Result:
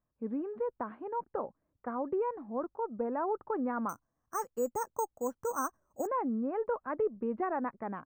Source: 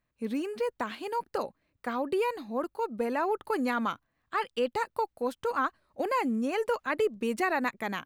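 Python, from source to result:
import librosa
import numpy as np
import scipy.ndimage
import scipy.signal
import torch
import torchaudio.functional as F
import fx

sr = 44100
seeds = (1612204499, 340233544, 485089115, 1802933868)

y = scipy.signal.sosfilt(scipy.signal.butter(4, 1300.0, 'lowpass', fs=sr, output='sos'), x)
y = fx.resample_bad(y, sr, factor=6, down='filtered', up='hold', at=(3.89, 6.07))
y = y * librosa.db_to_amplitude(-3.5)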